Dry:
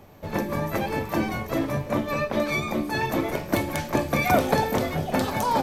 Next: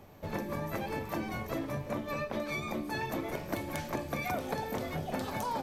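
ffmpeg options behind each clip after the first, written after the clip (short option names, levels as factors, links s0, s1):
-af "acompressor=threshold=0.0398:ratio=4,volume=0.596"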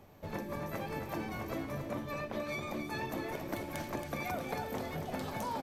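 -af "aecho=1:1:275:0.447,volume=0.668"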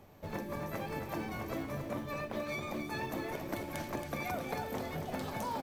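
-af "acrusher=bits=7:mode=log:mix=0:aa=0.000001"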